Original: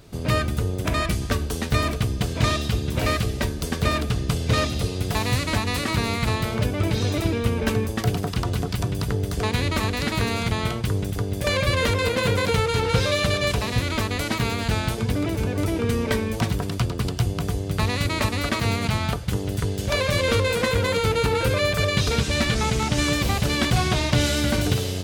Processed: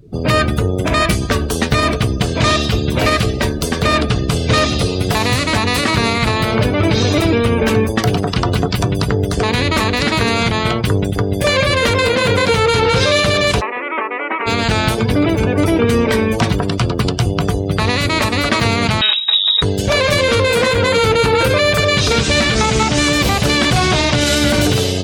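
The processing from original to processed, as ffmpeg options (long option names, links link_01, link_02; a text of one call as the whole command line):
ffmpeg -i in.wav -filter_complex "[0:a]asplit=3[link_01][link_02][link_03];[link_01]afade=type=out:start_time=4.35:duration=0.02[link_04];[link_02]aecho=1:1:790:0.0944,afade=type=in:start_time=4.35:duration=0.02,afade=type=out:start_time=7.4:duration=0.02[link_05];[link_03]afade=type=in:start_time=7.4:duration=0.02[link_06];[link_04][link_05][link_06]amix=inputs=3:normalize=0,asplit=3[link_07][link_08][link_09];[link_07]afade=type=out:start_time=13.6:duration=0.02[link_10];[link_08]highpass=frequency=390:width=0.5412,highpass=frequency=390:width=1.3066,equalizer=frequency=460:width_type=q:width=4:gain=-5,equalizer=frequency=660:width_type=q:width=4:gain=-8,equalizer=frequency=1600:width_type=q:width=4:gain=-6,lowpass=frequency=2200:width=0.5412,lowpass=frequency=2200:width=1.3066,afade=type=in:start_time=13.6:duration=0.02,afade=type=out:start_time=14.46:duration=0.02[link_11];[link_09]afade=type=in:start_time=14.46:duration=0.02[link_12];[link_10][link_11][link_12]amix=inputs=3:normalize=0,asettb=1/sr,asplit=3[link_13][link_14][link_15];[link_13]atrim=end=19.014[link_16];[link_14]atrim=start=19.01:end=19.62,asetpts=PTS-STARTPTS,afade=type=in:duration=0.004:curve=qsin,afade=type=out:start_time=0.606:duration=0.004:curve=qsin,lowpass=frequency=3300:width_type=q:width=0.5098,lowpass=frequency=3300:width_type=q:width=0.6013,lowpass=frequency=3300:width_type=q:width=0.9,lowpass=frequency=3300:width_type=q:width=2.563,afreqshift=-3900[link_17];[link_15]atrim=start=19.616[link_18];[link_16][link_17]acrossfade=duration=0.004:curve1=hsin:curve2=qsin[link_19];[link_19][link_18]acrossfade=duration=0.004:curve1=qsin:curve2=hsin,afftdn=noise_reduction=27:noise_floor=-42,lowshelf=frequency=120:gain=-8.5,alimiter=level_in=15.5dB:limit=-1dB:release=50:level=0:latency=1,volume=-3dB" out.wav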